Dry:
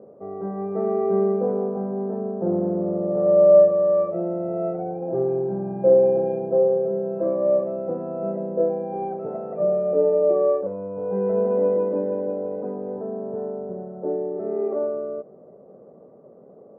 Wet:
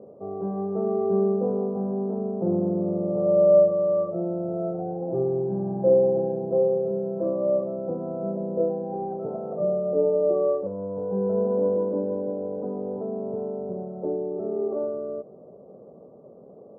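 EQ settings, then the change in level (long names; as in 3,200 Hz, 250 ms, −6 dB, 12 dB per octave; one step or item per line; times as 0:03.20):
dynamic equaliser 690 Hz, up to −4 dB, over −30 dBFS, Q 0.73
low-pass filter 1,200 Hz 24 dB per octave
low-shelf EQ 69 Hz +10 dB
0.0 dB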